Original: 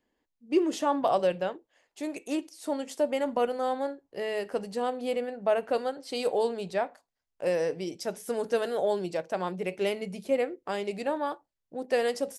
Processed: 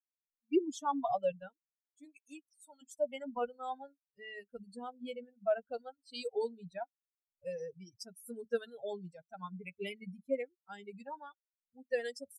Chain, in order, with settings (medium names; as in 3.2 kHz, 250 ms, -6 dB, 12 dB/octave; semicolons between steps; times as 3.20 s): expander on every frequency bin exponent 3; 2.04–2.81 s: high-pass 340 Hz -> 1.1 kHz 12 dB/octave; trim -2.5 dB